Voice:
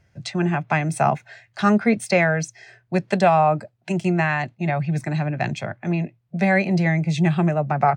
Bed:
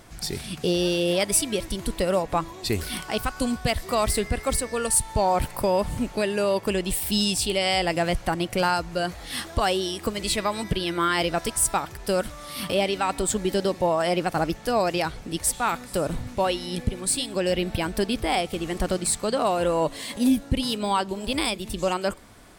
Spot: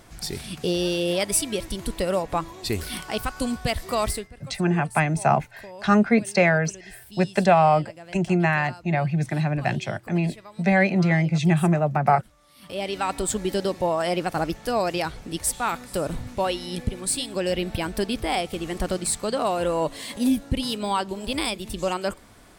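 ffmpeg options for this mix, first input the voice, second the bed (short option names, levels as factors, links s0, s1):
-filter_complex "[0:a]adelay=4250,volume=0.944[s0];[1:a]volume=7.5,afade=t=out:st=4.06:d=0.22:silence=0.11885,afade=t=in:st=12.61:d=0.41:silence=0.11885[s1];[s0][s1]amix=inputs=2:normalize=0"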